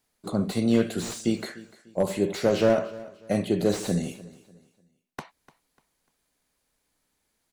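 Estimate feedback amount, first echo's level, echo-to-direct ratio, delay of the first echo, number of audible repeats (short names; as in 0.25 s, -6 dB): 33%, -19.5 dB, -19.0 dB, 0.297 s, 2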